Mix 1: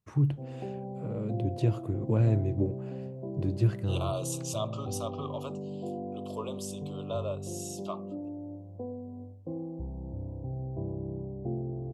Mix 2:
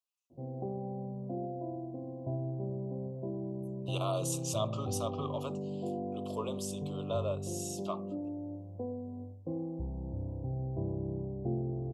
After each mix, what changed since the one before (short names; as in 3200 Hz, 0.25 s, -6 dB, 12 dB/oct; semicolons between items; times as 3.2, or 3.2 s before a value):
first voice: muted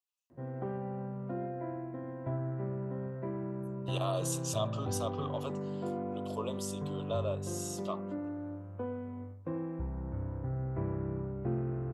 background: remove elliptic low-pass 780 Hz, stop band 70 dB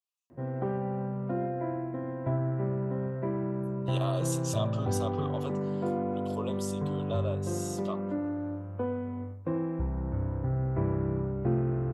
background +6.0 dB